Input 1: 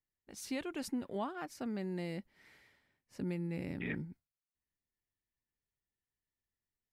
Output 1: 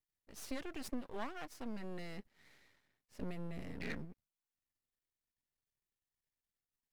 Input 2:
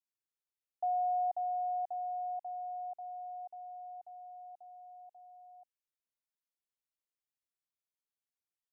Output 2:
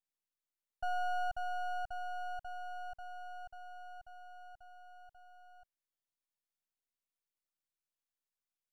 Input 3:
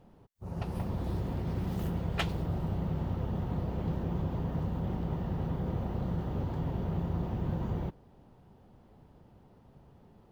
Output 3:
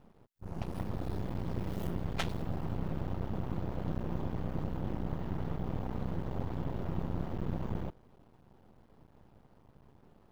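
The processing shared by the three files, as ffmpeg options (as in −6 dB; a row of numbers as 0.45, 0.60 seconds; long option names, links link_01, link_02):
-af "aeval=exprs='max(val(0),0)':channel_layout=same,volume=1dB"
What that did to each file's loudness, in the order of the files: −5.5, −4.0, −3.5 LU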